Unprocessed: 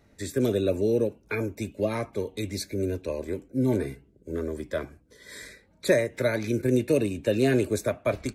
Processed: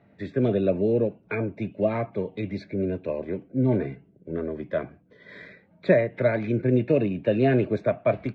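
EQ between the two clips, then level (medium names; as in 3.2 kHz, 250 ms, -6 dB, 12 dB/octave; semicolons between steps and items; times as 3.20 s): cabinet simulation 110–3000 Hz, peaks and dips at 120 Hz +6 dB, 180 Hz +10 dB, 680 Hz +7 dB; 0.0 dB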